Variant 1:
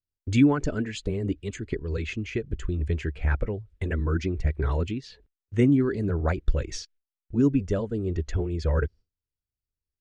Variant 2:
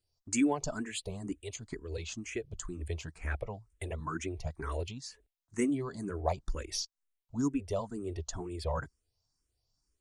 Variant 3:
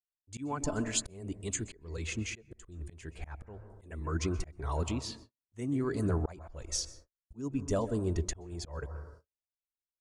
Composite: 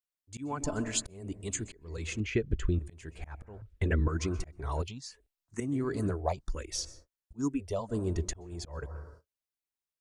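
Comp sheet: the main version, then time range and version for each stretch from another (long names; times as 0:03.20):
3
0:02.20–0:02.79: punch in from 1
0:03.62–0:04.08: punch in from 1
0:04.82–0:05.60: punch in from 2
0:06.13–0:06.75: punch in from 2, crossfade 0.10 s
0:07.41–0:07.91: punch in from 2, crossfade 0.06 s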